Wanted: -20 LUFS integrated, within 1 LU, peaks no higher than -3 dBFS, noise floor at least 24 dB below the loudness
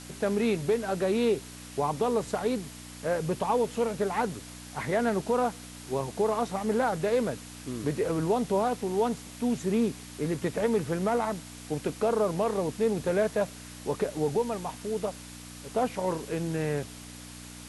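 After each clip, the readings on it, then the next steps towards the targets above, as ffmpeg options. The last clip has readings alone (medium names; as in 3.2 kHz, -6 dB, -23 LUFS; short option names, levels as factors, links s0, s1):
hum 60 Hz; highest harmonic 300 Hz; hum level -45 dBFS; noise floor -45 dBFS; noise floor target -54 dBFS; loudness -29.5 LUFS; peak level -16.0 dBFS; loudness target -20.0 LUFS
-> -af "bandreject=f=60:t=h:w=4,bandreject=f=120:t=h:w=4,bandreject=f=180:t=h:w=4,bandreject=f=240:t=h:w=4,bandreject=f=300:t=h:w=4"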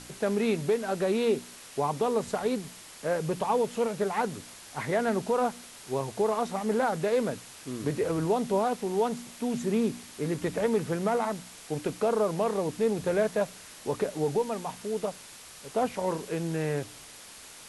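hum not found; noise floor -48 dBFS; noise floor target -54 dBFS
-> -af "afftdn=nr=6:nf=-48"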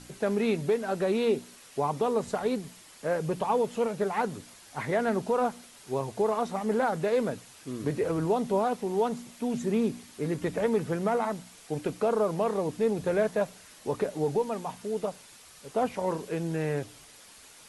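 noise floor -52 dBFS; noise floor target -54 dBFS
-> -af "afftdn=nr=6:nf=-52"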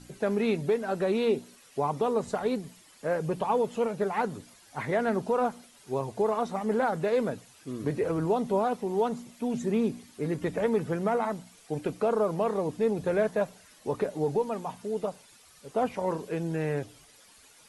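noise floor -57 dBFS; loudness -29.5 LUFS; peak level -15.5 dBFS; loudness target -20.0 LUFS
-> -af "volume=2.99"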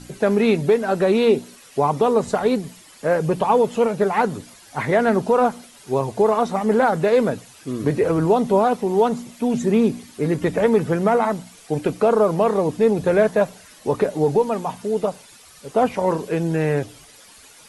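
loudness -20.0 LUFS; peak level -6.0 dBFS; noise floor -47 dBFS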